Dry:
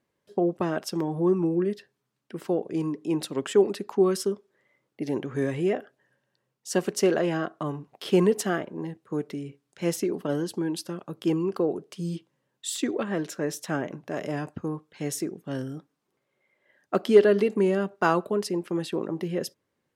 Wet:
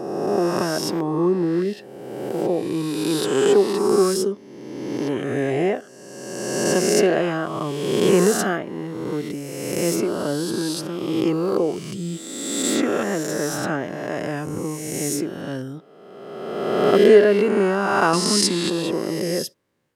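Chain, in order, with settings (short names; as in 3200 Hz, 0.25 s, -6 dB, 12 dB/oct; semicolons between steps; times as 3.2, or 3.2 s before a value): spectral swells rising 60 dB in 1.76 s; 18.13–18.7 ten-band EQ 125 Hz +3 dB, 250 Hz +8 dB, 500 Hz -9 dB, 2000 Hz +7 dB, 4000 Hz +8 dB, 8000 Hz +11 dB; gain +2 dB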